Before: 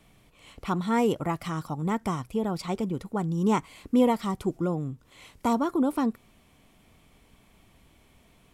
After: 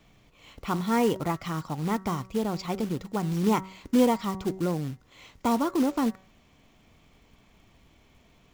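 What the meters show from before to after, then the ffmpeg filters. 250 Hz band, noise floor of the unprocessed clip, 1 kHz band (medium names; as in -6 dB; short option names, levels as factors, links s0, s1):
0.0 dB, -61 dBFS, 0.0 dB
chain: -af "aresample=16000,aresample=44100,acrusher=bits=4:mode=log:mix=0:aa=0.000001,bandreject=f=189.2:t=h:w=4,bandreject=f=378.4:t=h:w=4,bandreject=f=567.6:t=h:w=4,bandreject=f=756.8:t=h:w=4,bandreject=f=946:t=h:w=4,bandreject=f=1135.2:t=h:w=4,bandreject=f=1324.4:t=h:w=4,bandreject=f=1513.6:t=h:w=4,bandreject=f=1702.8:t=h:w=4,bandreject=f=1892:t=h:w=4,bandreject=f=2081.2:t=h:w=4"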